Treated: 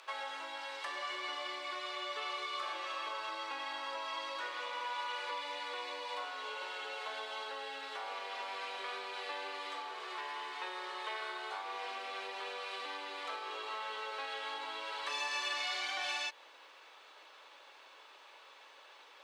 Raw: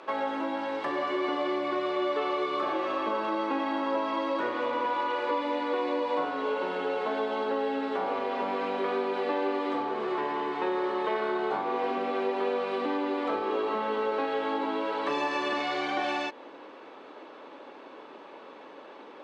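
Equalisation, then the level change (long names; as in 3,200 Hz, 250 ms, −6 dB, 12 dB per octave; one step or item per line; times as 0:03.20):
high-pass filter 440 Hz 12 dB per octave
first difference
+7.0 dB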